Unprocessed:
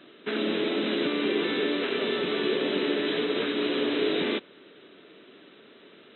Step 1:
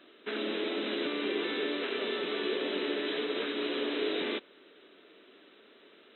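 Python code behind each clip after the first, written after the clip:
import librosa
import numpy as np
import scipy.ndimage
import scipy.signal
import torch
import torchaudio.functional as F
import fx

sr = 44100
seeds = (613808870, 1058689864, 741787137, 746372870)

y = fx.peak_eq(x, sr, hz=140.0, db=-14.0, octaves=0.97)
y = F.gain(torch.from_numpy(y), -4.5).numpy()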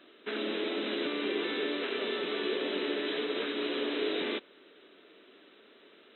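y = x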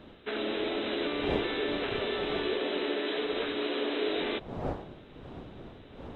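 y = fx.dmg_wind(x, sr, seeds[0], corner_hz=400.0, level_db=-44.0)
y = fx.dynamic_eq(y, sr, hz=740.0, q=1.6, threshold_db=-50.0, ratio=4.0, max_db=6)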